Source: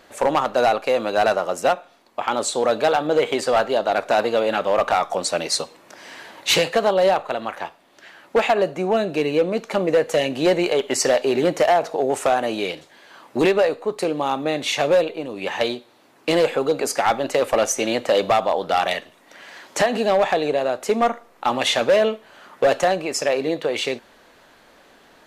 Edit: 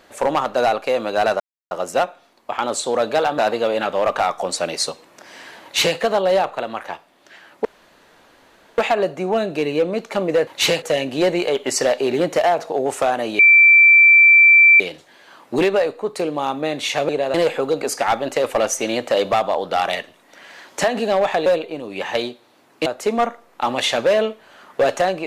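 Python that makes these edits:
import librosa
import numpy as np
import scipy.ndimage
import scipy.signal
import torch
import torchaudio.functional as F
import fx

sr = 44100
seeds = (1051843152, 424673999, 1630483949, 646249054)

y = fx.edit(x, sr, fx.insert_silence(at_s=1.4, length_s=0.31),
    fx.cut(start_s=3.07, length_s=1.03),
    fx.duplicate(start_s=6.35, length_s=0.35, to_s=10.06),
    fx.insert_room_tone(at_s=8.37, length_s=1.13),
    fx.insert_tone(at_s=12.63, length_s=1.41, hz=2340.0, db=-6.5),
    fx.swap(start_s=14.92, length_s=1.4, other_s=20.44, other_length_s=0.25), tone=tone)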